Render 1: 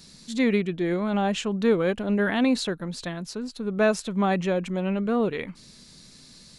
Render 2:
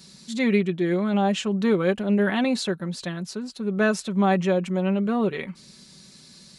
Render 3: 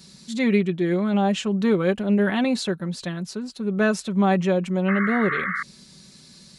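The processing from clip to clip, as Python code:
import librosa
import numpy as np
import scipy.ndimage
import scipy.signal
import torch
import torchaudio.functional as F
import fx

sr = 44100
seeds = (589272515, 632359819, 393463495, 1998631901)

y1 = scipy.signal.sosfilt(scipy.signal.butter(2, 66.0, 'highpass', fs=sr, output='sos'), x)
y1 = y1 + 0.48 * np.pad(y1, (int(5.3 * sr / 1000.0), 0))[:len(y1)]
y2 = fx.low_shelf(y1, sr, hz=180.0, db=3.5)
y2 = fx.spec_paint(y2, sr, seeds[0], shape='noise', start_s=4.88, length_s=0.75, low_hz=1100.0, high_hz=2200.0, level_db=-27.0)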